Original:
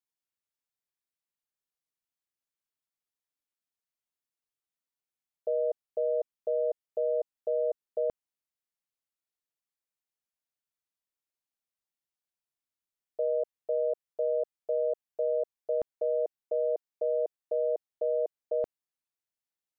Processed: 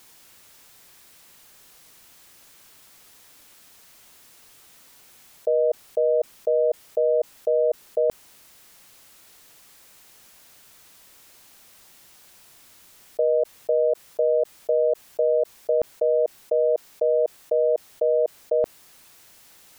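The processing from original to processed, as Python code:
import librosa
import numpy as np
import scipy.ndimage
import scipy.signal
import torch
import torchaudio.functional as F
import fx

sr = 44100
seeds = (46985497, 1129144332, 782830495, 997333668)

y = fx.env_flatten(x, sr, amount_pct=50)
y = y * 10.0 ** (8.0 / 20.0)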